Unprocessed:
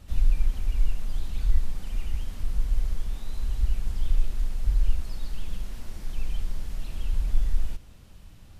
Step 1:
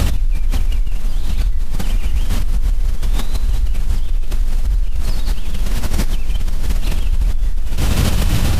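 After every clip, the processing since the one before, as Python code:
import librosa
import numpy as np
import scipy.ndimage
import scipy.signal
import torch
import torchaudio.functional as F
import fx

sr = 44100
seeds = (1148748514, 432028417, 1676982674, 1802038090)

y = fx.env_flatten(x, sr, amount_pct=100)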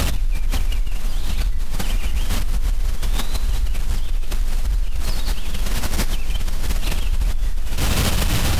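y = fx.low_shelf(x, sr, hz=470.0, db=-6.5)
y = np.clip(10.0 ** (14.5 / 20.0) * y, -1.0, 1.0) / 10.0 ** (14.5 / 20.0)
y = F.gain(torch.from_numpy(y), 2.5).numpy()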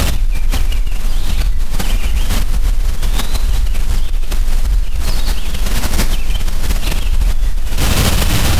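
y = fx.doubler(x, sr, ms=48.0, db=-13.5)
y = fx.attack_slew(y, sr, db_per_s=210.0)
y = F.gain(torch.from_numpy(y), 6.0).numpy()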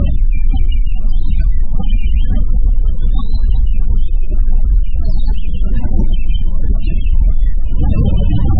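y = fx.spec_topn(x, sr, count=16)
y = fx.air_absorb(y, sr, metres=310.0)
y = F.gain(torch.from_numpy(y), 2.5).numpy()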